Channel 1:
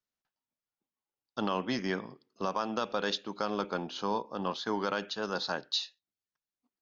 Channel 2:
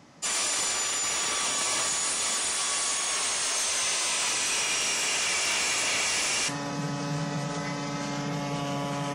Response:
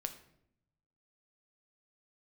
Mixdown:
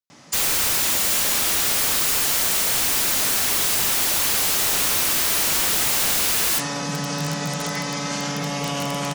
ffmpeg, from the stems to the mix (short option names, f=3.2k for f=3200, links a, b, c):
-filter_complex "[0:a]volume=-8.5dB[a];[1:a]adelay=100,volume=2.5dB,asplit=2[b][c];[c]volume=-13dB[d];[2:a]atrim=start_sample=2205[e];[d][e]afir=irnorm=-1:irlink=0[f];[a][b][f]amix=inputs=3:normalize=0,highpass=76,highshelf=f=2.2k:g=7.5,aeval=exprs='(mod(6.31*val(0)+1,2)-1)/6.31':c=same"